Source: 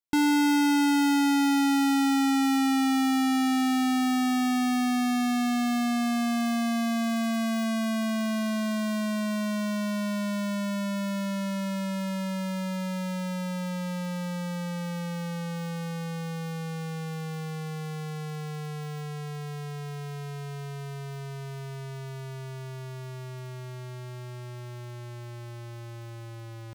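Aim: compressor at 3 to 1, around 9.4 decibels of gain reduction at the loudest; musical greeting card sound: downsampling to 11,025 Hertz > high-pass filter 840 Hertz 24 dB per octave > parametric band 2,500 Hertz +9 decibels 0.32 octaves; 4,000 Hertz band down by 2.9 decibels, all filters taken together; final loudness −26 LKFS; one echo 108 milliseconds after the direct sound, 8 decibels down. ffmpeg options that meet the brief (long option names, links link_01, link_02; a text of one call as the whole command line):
ffmpeg -i in.wav -af "equalizer=frequency=4000:width_type=o:gain=-6,acompressor=threshold=-37dB:ratio=3,aecho=1:1:108:0.398,aresample=11025,aresample=44100,highpass=frequency=840:width=0.5412,highpass=frequency=840:width=1.3066,equalizer=frequency=2500:width_type=o:width=0.32:gain=9,volume=16.5dB" out.wav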